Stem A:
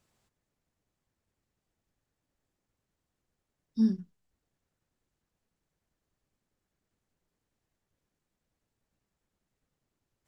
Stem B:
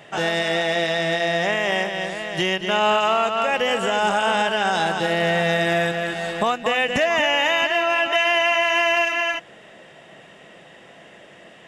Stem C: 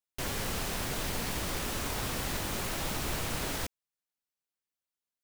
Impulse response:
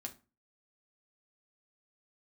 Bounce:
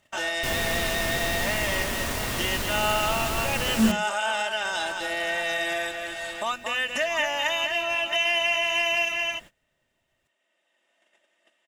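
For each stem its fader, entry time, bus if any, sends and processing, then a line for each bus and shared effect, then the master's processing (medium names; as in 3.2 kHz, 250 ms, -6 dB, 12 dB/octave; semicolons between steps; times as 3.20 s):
+1.5 dB, 0.00 s, send -13 dB, upward compressor, threshold -36 dBFS
0.0 dB, 0.00 s, send -22.5 dB, high-pass 870 Hz 6 dB/octave; treble shelf 7.9 kHz +9.5 dB; comb 3.3 ms, depth 63%; auto duck -7 dB, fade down 0.25 s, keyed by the first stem
+1.5 dB, 0.25 s, send -4 dB, none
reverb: on, RT60 0.30 s, pre-delay 4 ms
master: gate -42 dBFS, range -24 dB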